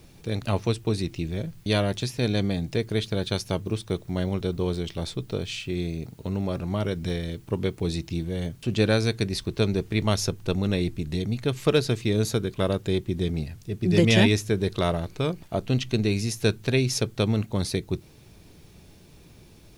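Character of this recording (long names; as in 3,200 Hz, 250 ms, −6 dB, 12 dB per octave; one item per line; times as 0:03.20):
background noise floor −51 dBFS
spectral slope −5.5 dB per octave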